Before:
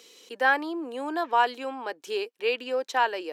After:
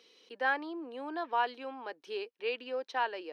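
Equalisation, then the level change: Savitzky-Golay filter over 15 samples; -8.0 dB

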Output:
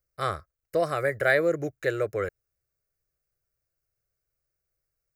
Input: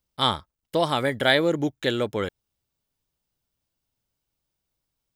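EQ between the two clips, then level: peaking EQ 9.1 kHz -4.5 dB 0.55 oct; static phaser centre 900 Hz, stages 6; 0.0 dB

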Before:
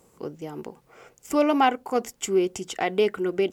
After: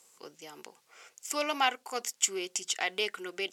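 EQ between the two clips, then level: band-pass filter 5.9 kHz, Q 0.67; +5.5 dB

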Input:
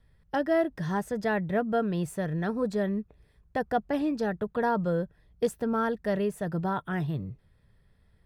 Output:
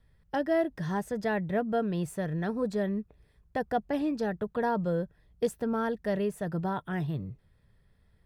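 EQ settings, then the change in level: dynamic bell 1.3 kHz, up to -4 dB, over -42 dBFS, Q 2.8; -1.5 dB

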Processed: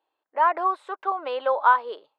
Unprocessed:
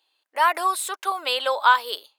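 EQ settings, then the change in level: low-pass 1.1 kHz 12 dB/octave; +2.0 dB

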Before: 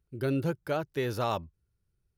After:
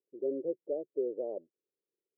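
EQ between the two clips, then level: high-pass 380 Hz 24 dB/octave; steep low-pass 550 Hz 48 dB/octave; +2.0 dB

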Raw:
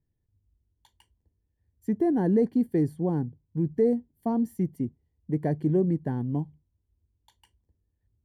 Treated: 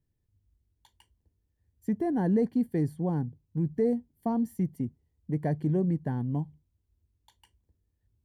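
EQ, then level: dynamic bell 360 Hz, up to -6 dB, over -37 dBFS, Q 1.5; 0.0 dB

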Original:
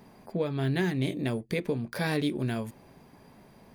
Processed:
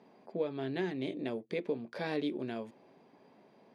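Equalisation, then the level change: band-pass 340–3100 Hz; peaking EQ 1.5 kHz -8.5 dB 2.1 oct; 0.0 dB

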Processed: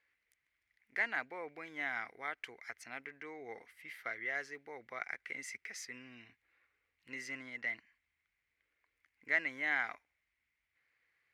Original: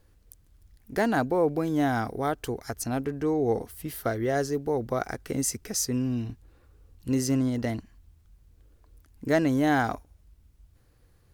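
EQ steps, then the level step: band-pass filter 2.1 kHz, Q 7.4; +7.5 dB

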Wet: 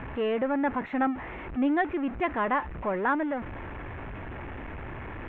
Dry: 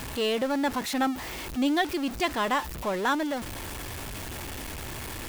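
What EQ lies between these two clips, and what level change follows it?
inverse Chebyshev low-pass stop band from 4.4 kHz, stop band 40 dB; 0.0 dB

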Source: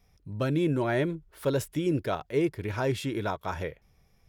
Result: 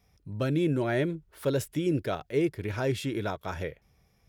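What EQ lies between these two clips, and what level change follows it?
high-pass 43 Hz; dynamic bell 990 Hz, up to -6 dB, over -48 dBFS, Q 2.3; 0.0 dB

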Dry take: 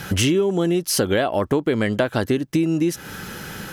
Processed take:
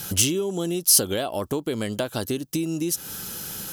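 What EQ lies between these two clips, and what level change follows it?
pre-emphasis filter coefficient 0.8; peaking EQ 1.9 kHz -9 dB 0.79 oct; +7.0 dB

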